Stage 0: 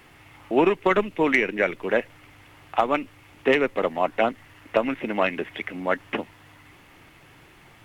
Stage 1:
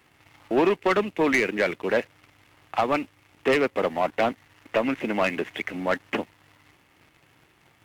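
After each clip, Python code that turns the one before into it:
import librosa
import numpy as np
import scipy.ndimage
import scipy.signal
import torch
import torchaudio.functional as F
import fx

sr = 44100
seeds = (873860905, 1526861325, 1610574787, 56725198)

y = scipy.signal.sosfilt(scipy.signal.butter(2, 57.0, 'highpass', fs=sr, output='sos'), x)
y = fx.leveller(y, sr, passes=2)
y = y * 10.0 ** (-6.0 / 20.0)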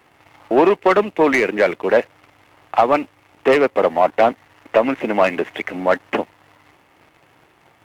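y = fx.peak_eq(x, sr, hz=700.0, db=8.5, octaves=2.3)
y = y * 10.0 ** (1.5 / 20.0)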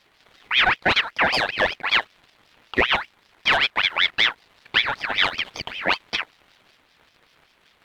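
y = fx.ring_lfo(x, sr, carrier_hz=2000.0, swing_pct=45, hz=5.2)
y = y * 10.0 ** (-2.5 / 20.0)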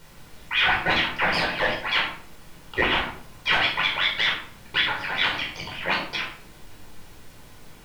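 y = fx.dmg_noise_colour(x, sr, seeds[0], colour='pink', level_db=-47.0)
y = fx.room_shoebox(y, sr, seeds[1], volume_m3=790.0, walls='furnished', distance_m=4.7)
y = y * 10.0 ** (-8.5 / 20.0)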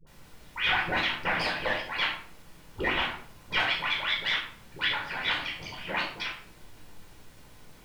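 y = fx.dispersion(x, sr, late='highs', ms=70.0, hz=580.0)
y = y * 10.0 ** (-5.5 / 20.0)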